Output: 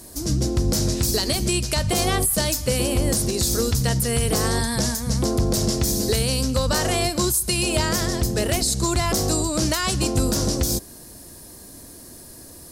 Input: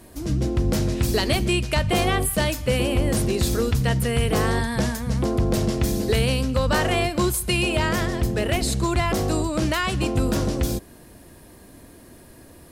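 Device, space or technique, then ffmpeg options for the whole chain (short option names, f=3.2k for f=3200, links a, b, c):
over-bright horn tweeter: -af "highshelf=f=3.8k:t=q:w=1.5:g=9.5,alimiter=limit=-12.5dB:level=0:latency=1:release=114,volume=1dB"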